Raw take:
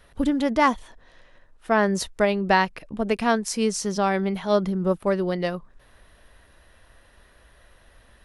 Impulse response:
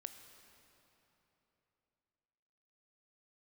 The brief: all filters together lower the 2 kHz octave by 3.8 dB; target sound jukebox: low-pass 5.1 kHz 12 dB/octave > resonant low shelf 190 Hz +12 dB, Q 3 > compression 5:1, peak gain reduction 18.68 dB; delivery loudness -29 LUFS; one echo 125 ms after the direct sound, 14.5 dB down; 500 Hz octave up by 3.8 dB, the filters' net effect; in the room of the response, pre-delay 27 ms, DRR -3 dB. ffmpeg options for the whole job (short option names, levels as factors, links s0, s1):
-filter_complex "[0:a]equalizer=f=500:t=o:g=8,equalizer=f=2000:t=o:g=-5,aecho=1:1:125:0.188,asplit=2[s0][s1];[1:a]atrim=start_sample=2205,adelay=27[s2];[s1][s2]afir=irnorm=-1:irlink=0,volume=2.37[s3];[s0][s3]amix=inputs=2:normalize=0,lowpass=5100,lowshelf=f=190:t=q:w=3:g=12,acompressor=threshold=0.0398:ratio=5,volume=1.26"